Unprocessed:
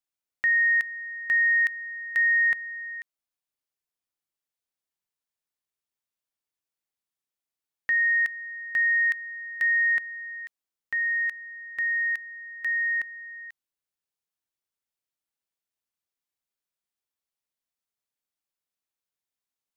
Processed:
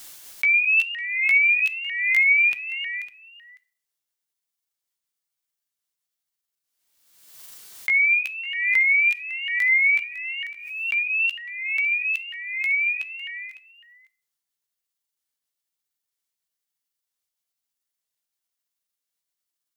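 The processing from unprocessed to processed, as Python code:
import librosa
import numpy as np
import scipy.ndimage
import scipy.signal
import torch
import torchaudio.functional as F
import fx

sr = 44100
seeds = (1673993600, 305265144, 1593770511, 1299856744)

y = fx.pitch_ramps(x, sr, semitones=7.5, every_ms=948)
y = fx.high_shelf(y, sr, hz=2100.0, db=9.0)
y = fx.notch(y, sr, hz=2500.0, q=20.0)
y = y + 10.0 ** (-16.5 / 20.0) * np.pad(y, (int(554 * sr / 1000.0), 0))[:len(y)]
y = fx.room_shoebox(y, sr, seeds[0], volume_m3=800.0, walls='furnished', distance_m=0.42)
y = fx.pre_swell(y, sr, db_per_s=50.0)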